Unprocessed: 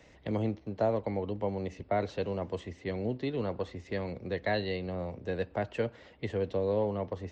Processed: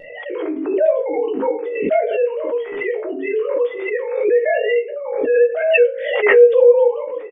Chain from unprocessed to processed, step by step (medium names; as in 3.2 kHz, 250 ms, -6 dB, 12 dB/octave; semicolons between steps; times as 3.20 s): formants replaced by sine waves; vibrato 0.59 Hz 6.9 cents; doubling 19 ms -5 dB; on a send at -1.5 dB: reverberation RT60 0.30 s, pre-delay 6 ms; on the sum: swell ahead of each attack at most 47 dB/s; trim +7.5 dB